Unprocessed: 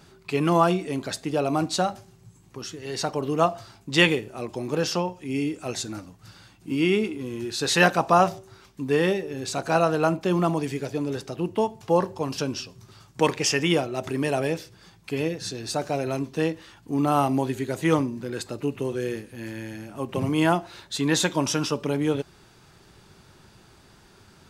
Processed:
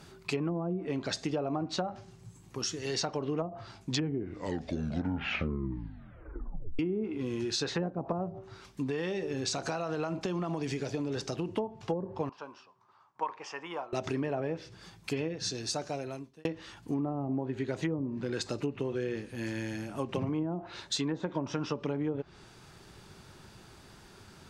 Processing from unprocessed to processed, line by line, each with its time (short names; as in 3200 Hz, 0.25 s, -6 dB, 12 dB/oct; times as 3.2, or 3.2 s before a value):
3.74 tape stop 3.05 s
8.89–11.53 compressor, threshold -26 dBFS
12.29–13.93 band-pass 1000 Hz, Q 4
15.12–16.45 fade out
20.43–21.36 low shelf 160 Hz -3 dB
whole clip: treble ducked by the level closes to 400 Hz, closed at -16.5 dBFS; dynamic EQ 5900 Hz, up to +7 dB, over -54 dBFS, Q 1.4; compressor 6:1, threshold -29 dBFS